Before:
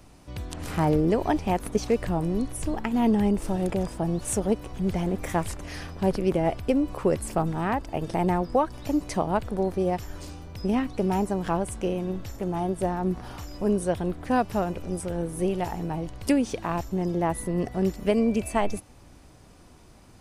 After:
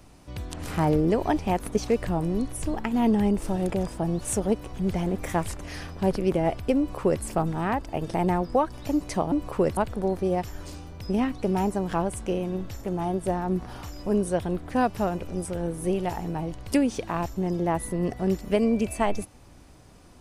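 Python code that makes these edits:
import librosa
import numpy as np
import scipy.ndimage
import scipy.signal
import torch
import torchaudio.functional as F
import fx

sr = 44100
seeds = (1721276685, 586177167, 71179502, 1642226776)

y = fx.edit(x, sr, fx.duplicate(start_s=6.78, length_s=0.45, to_s=9.32), tone=tone)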